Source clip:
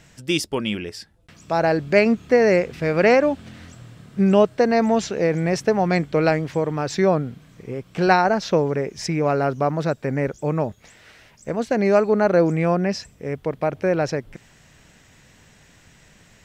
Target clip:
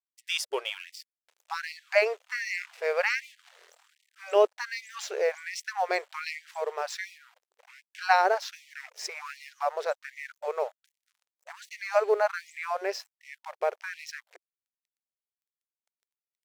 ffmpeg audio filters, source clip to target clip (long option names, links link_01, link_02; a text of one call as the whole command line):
ffmpeg -i in.wav -af "aeval=exprs='sgn(val(0))*max(abs(val(0))-0.00841,0)':channel_layout=same,afftfilt=real='re*gte(b*sr/1024,350*pow(1900/350,0.5+0.5*sin(2*PI*1.3*pts/sr)))':imag='im*gte(b*sr/1024,350*pow(1900/350,0.5+0.5*sin(2*PI*1.3*pts/sr)))':win_size=1024:overlap=0.75,volume=-4dB" out.wav